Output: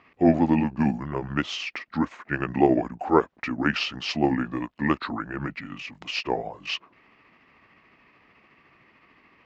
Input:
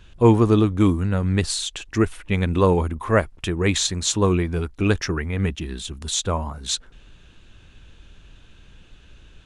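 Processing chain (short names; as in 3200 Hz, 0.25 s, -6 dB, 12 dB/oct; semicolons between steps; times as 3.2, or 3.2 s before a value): delay-line pitch shifter -5.5 st; BPF 250–2800 Hz; gain +1.5 dB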